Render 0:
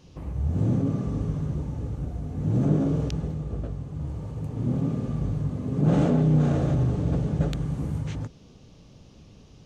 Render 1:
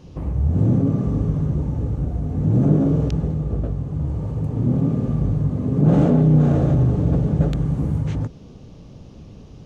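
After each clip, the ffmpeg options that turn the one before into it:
ffmpeg -i in.wav -filter_complex "[0:a]tiltshelf=frequency=1400:gain=4.5,asplit=2[link_01][link_02];[link_02]acompressor=threshold=-26dB:ratio=6,volume=-2dB[link_03];[link_01][link_03]amix=inputs=2:normalize=0" out.wav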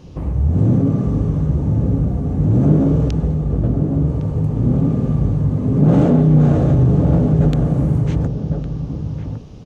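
ffmpeg -i in.wav -filter_complex "[0:a]asplit=2[link_01][link_02];[link_02]adelay=1108,volume=-6dB,highshelf=frequency=4000:gain=-24.9[link_03];[link_01][link_03]amix=inputs=2:normalize=0,asplit=2[link_04][link_05];[link_05]asoftclip=type=hard:threshold=-14dB,volume=-10.5dB[link_06];[link_04][link_06]amix=inputs=2:normalize=0,volume=1dB" out.wav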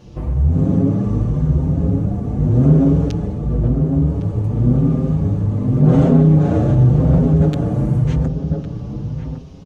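ffmpeg -i in.wav -filter_complex "[0:a]asplit=2[link_01][link_02];[link_02]adelay=6.5,afreqshift=0.9[link_03];[link_01][link_03]amix=inputs=2:normalize=1,volume=3dB" out.wav

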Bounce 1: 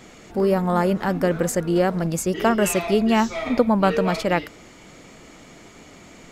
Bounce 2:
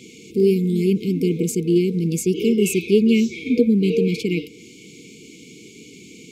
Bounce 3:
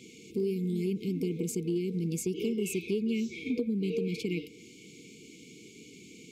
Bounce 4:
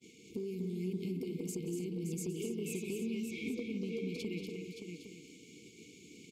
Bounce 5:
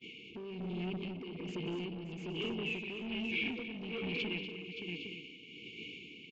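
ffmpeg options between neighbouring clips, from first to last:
ffmpeg -i in.wav -af "afftfilt=real='re*(1-between(b*sr/4096,490,2100))':imag='im*(1-between(b*sr/4096,490,2100))':win_size=4096:overlap=0.75,highpass=140,adynamicequalizer=threshold=0.00631:dfrequency=2500:dqfactor=0.7:tfrequency=2500:tqfactor=0.7:attack=5:release=100:ratio=0.375:range=3:mode=cutabove:tftype=highshelf,volume=4.5dB" out.wav
ffmpeg -i in.wav -af "acompressor=threshold=-20dB:ratio=4,volume=-8dB" out.wav
ffmpeg -i in.wav -af "agate=range=-33dB:threshold=-46dB:ratio=3:detection=peak,acompressor=threshold=-35dB:ratio=6,aecho=1:1:179|241|296|572|811:0.178|0.473|0.188|0.422|0.211,volume=-2dB" out.wav
ffmpeg -i in.wav -af "aresample=16000,asoftclip=type=tanh:threshold=-38dB,aresample=44100,tremolo=f=1.2:d=0.52,lowpass=frequency=2800:width_type=q:width=6.1,volume=4dB" out.wav

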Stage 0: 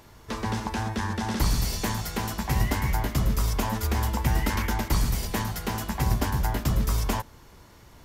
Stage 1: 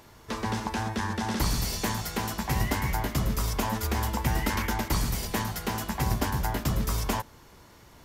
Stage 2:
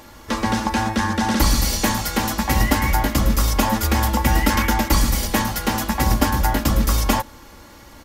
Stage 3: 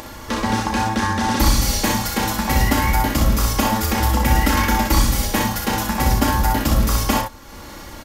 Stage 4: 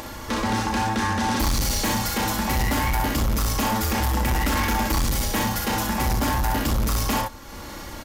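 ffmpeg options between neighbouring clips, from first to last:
ffmpeg -i in.wav -af "lowshelf=frequency=98:gain=-6" out.wav
ffmpeg -i in.wav -af "aecho=1:1:3.6:0.55,volume=8.5dB" out.wav
ffmpeg -i in.wav -af "acompressor=mode=upward:threshold=-28dB:ratio=2.5,aecho=1:1:34|62:0.473|0.596,volume=-1dB" out.wav
ffmpeg -i in.wav -af "asoftclip=type=tanh:threshold=-18.5dB" out.wav

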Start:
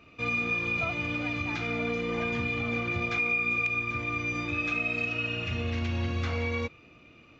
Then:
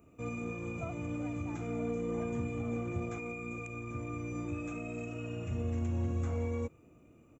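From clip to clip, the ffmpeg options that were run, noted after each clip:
ffmpeg -i in.wav -af "firequalizer=gain_entry='entry(370,0);entry(1700,-14);entry(4500,-24);entry(7400,10)':delay=0.05:min_phase=1,volume=-2.5dB" out.wav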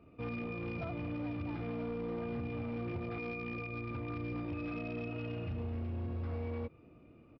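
ffmpeg -i in.wav -af "acompressor=threshold=-35dB:ratio=6,aresample=11025,volume=35.5dB,asoftclip=hard,volume=-35.5dB,aresample=44100,volume=1.5dB" out.wav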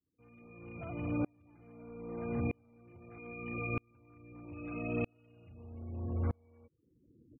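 ffmpeg -i in.wav -af "afftfilt=real='re*gte(hypot(re,im),0.00355)':imag='im*gte(hypot(re,im),0.00355)':win_size=1024:overlap=0.75,aeval=exprs='val(0)*pow(10,-38*if(lt(mod(-0.79*n/s,1),2*abs(-0.79)/1000),1-mod(-0.79*n/s,1)/(2*abs(-0.79)/1000),(mod(-0.79*n/s,1)-2*abs(-0.79)/1000)/(1-2*abs(-0.79)/1000))/20)':channel_layout=same,volume=8dB" out.wav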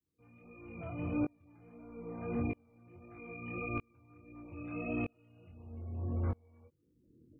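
ffmpeg -i in.wav -af "flanger=delay=20:depth=4.6:speed=1.6,volume=2.5dB" out.wav

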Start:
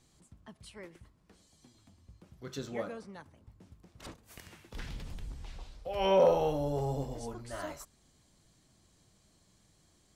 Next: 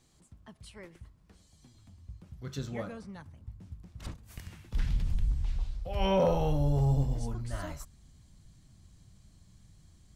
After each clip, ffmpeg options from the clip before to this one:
ffmpeg -i in.wav -af "asubboost=boost=5.5:cutoff=170" out.wav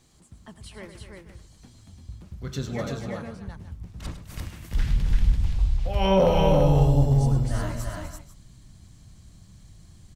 ffmpeg -i in.wav -af "aecho=1:1:99|104|251|338|492:0.133|0.266|0.282|0.668|0.2,volume=6dB" out.wav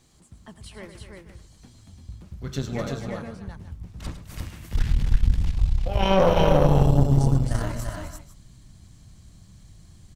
ffmpeg -i in.wav -af "aeval=exprs='(tanh(6.31*val(0)+0.8)-tanh(0.8))/6.31':channel_layout=same,volume=5.5dB" out.wav

